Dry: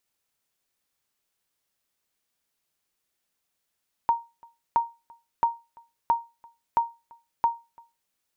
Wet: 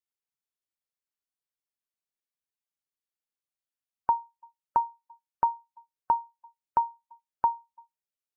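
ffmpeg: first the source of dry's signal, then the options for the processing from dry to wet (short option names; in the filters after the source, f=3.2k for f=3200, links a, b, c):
-f lavfi -i "aevalsrc='0.211*(sin(2*PI*931*mod(t,0.67))*exp(-6.91*mod(t,0.67)/0.26)+0.0398*sin(2*PI*931*max(mod(t,0.67)-0.34,0))*exp(-6.91*max(mod(t,0.67)-0.34,0)/0.26))':d=4.02:s=44100"
-af "afftdn=nr=18:nf=-41"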